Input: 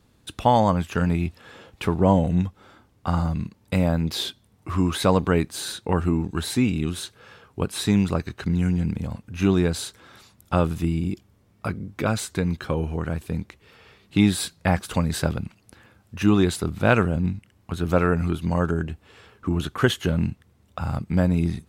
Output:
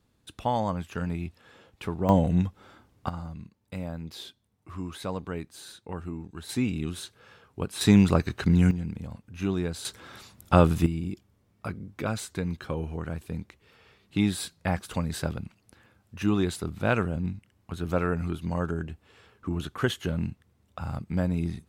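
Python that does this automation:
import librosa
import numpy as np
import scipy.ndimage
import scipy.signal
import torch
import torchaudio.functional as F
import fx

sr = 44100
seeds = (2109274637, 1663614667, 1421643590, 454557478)

y = fx.gain(x, sr, db=fx.steps((0.0, -9.0), (2.09, -2.0), (3.09, -14.0), (6.49, -6.0), (7.81, 2.0), (8.71, -8.5), (9.85, 2.5), (10.86, -6.5)))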